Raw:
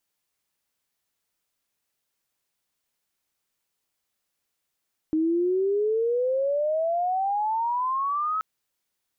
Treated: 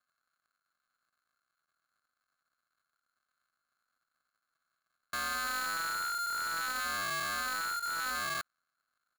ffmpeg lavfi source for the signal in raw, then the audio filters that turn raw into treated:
-f lavfi -i "aevalsrc='pow(10,(-20-3.5*t/3.28)/20)*sin(2*PI*310*3.28/log(1300/310)*(exp(log(1300/310)*t/3.28)-1))':d=3.28:s=44100"
-af "aresample=16000,acrusher=samples=32:mix=1:aa=0.000001,aresample=44100,asoftclip=type=tanh:threshold=-34dB,aeval=exprs='val(0)*sgn(sin(2*PI*1400*n/s))':c=same"

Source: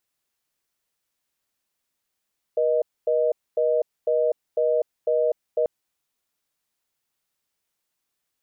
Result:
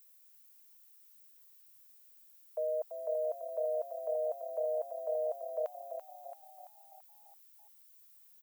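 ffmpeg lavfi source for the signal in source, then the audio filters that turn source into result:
-f lavfi -i "aevalsrc='0.0891*(sin(2*PI*480*t)+sin(2*PI*620*t))*clip(min(mod(t,0.5),0.25-mod(t,0.5))/0.005,0,1)':d=3.09:s=44100"
-filter_complex "[0:a]highpass=f=780:w=0.5412,highpass=f=780:w=1.3066,aemphasis=mode=production:type=bsi,asplit=7[a][b][c][d][e][f][g];[b]adelay=336,afreqshift=35,volume=-8.5dB[h];[c]adelay=672,afreqshift=70,volume=-13.9dB[i];[d]adelay=1008,afreqshift=105,volume=-19.2dB[j];[e]adelay=1344,afreqshift=140,volume=-24.6dB[k];[f]adelay=1680,afreqshift=175,volume=-29.9dB[l];[g]adelay=2016,afreqshift=210,volume=-35.3dB[m];[a][h][i][j][k][l][m]amix=inputs=7:normalize=0"

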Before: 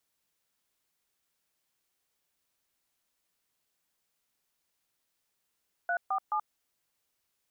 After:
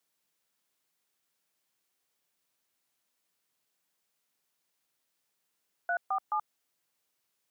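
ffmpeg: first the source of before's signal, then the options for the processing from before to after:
-f lavfi -i "aevalsrc='0.0335*clip(min(mod(t,0.214),0.08-mod(t,0.214))/0.002,0,1)*(eq(floor(t/0.214),0)*(sin(2*PI*697*mod(t,0.214))+sin(2*PI*1477*mod(t,0.214)))+eq(floor(t/0.214),1)*(sin(2*PI*770*mod(t,0.214))+sin(2*PI*1209*mod(t,0.214)))+eq(floor(t/0.214),2)*(sin(2*PI*852*mod(t,0.214))+sin(2*PI*1209*mod(t,0.214))))':d=0.642:s=44100"
-af "highpass=120"

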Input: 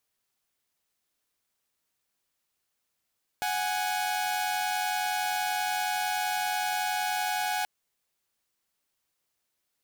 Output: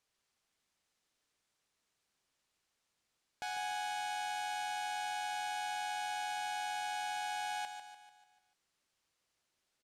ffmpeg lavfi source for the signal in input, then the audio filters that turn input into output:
-f lavfi -i "aevalsrc='0.0422*((2*mod(739.99*t,1)-1)+(2*mod(830.61*t,1)-1))':d=4.23:s=44100"
-filter_complex "[0:a]lowpass=7.8k,alimiter=level_in=8.5dB:limit=-24dB:level=0:latency=1:release=24,volume=-8.5dB,asplit=2[a][b];[b]aecho=0:1:147|294|441|588|735|882:0.398|0.195|0.0956|0.0468|0.023|0.0112[c];[a][c]amix=inputs=2:normalize=0"

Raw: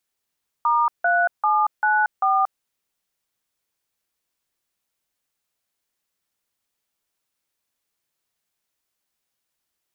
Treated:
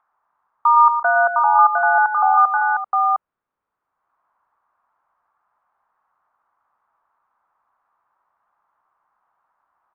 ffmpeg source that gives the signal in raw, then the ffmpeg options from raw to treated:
-f lavfi -i "aevalsrc='0.119*clip(min(mod(t,0.393),0.231-mod(t,0.393))/0.002,0,1)*(eq(floor(t/0.393),0)*(sin(2*PI*941*mod(t,0.393))+sin(2*PI*1209*mod(t,0.393)))+eq(floor(t/0.393),1)*(sin(2*PI*697*mod(t,0.393))+sin(2*PI*1477*mod(t,0.393)))+eq(floor(t/0.393),2)*(sin(2*PI*852*mod(t,0.393))+sin(2*PI*1209*mod(t,0.393)))+eq(floor(t/0.393),3)*(sin(2*PI*852*mod(t,0.393))+sin(2*PI*1477*mod(t,0.393)))+eq(floor(t/0.393),4)*(sin(2*PI*770*mod(t,0.393))+sin(2*PI*1209*mod(t,0.393))))':d=1.965:s=44100"
-filter_complex "[0:a]lowpass=f=1.2k:t=q:w=2.1,aecho=1:1:64|115|148|389|707:0.112|0.335|0.133|0.237|0.668,acrossover=split=790|800|890[a][b][c][d];[c]acompressor=mode=upward:threshold=-47dB:ratio=2.5[e];[a][b][e][d]amix=inputs=4:normalize=0"

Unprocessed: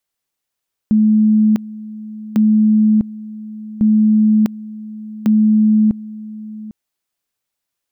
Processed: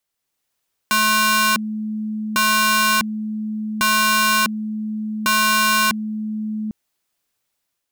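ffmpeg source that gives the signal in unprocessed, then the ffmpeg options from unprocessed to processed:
-f lavfi -i "aevalsrc='pow(10,(-8.5-18.5*gte(mod(t,1.45),0.65))/20)*sin(2*PI*215*t)':d=5.8:s=44100"
-af "dynaudnorm=f=130:g=5:m=5dB,aeval=exprs='(mod(3.35*val(0)+1,2)-1)/3.35':c=same"

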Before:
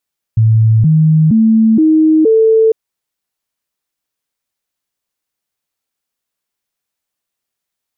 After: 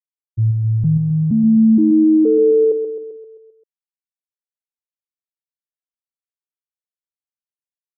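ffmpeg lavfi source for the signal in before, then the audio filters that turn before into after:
-f lavfi -i "aevalsrc='0.531*clip(min(mod(t,0.47),0.47-mod(t,0.47))/0.005,0,1)*sin(2*PI*111*pow(2,floor(t/0.47)/2)*mod(t,0.47))':d=2.35:s=44100"
-af "agate=range=-33dB:threshold=-4dB:ratio=3:detection=peak,aecho=1:1:131|262|393|524|655|786|917:0.398|0.219|0.12|0.0662|0.0364|0.02|0.011"

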